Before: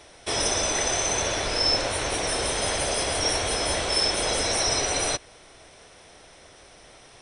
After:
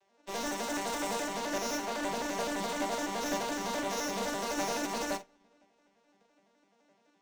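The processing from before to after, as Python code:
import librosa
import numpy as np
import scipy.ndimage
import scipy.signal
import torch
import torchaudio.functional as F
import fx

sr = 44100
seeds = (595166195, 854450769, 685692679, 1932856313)

p1 = fx.vocoder_arp(x, sr, chord='minor triad', root=55, every_ms=85)
p2 = fx.tube_stage(p1, sr, drive_db=34.0, bias=0.35)
p3 = (np.mod(10.0 ** (40.0 / 20.0) * p2 + 1.0, 2.0) - 1.0) / 10.0 ** (40.0 / 20.0)
p4 = p2 + (p3 * 10.0 ** (-11.5 / 20.0))
p5 = fx.room_shoebox(p4, sr, seeds[0], volume_m3=4000.0, walls='mixed', distance_m=0.61)
p6 = fx.formant_shift(p5, sr, semitones=2)
p7 = fx.doubler(p6, sr, ms=45.0, db=-6)
p8 = fx.upward_expand(p7, sr, threshold_db=-49.0, expansion=2.5)
y = p8 * 10.0 ** (3.5 / 20.0)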